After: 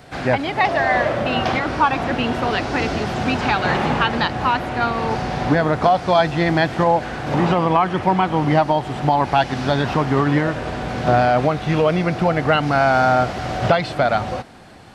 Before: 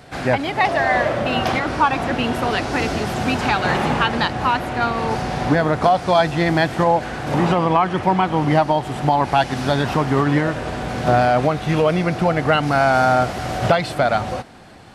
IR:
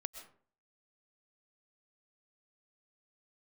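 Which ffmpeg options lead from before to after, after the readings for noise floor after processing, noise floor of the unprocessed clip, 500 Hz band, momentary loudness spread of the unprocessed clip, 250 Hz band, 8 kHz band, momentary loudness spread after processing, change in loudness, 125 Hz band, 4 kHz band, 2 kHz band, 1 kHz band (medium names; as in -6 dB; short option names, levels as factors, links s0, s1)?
-30 dBFS, -30 dBFS, 0.0 dB, 6 LU, 0.0 dB, no reading, 6 LU, 0.0 dB, 0.0 dB, -0.5 dB, 0.0 dB, 0.0 dB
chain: -filter_complex "[0:a]acrossover=split=6600[s0][s1];[s1]acompressor=threshold=0.00141:ratio=4:attack=1:release=60[s2];[s0][s2]amix=inputs=2:normalize=0"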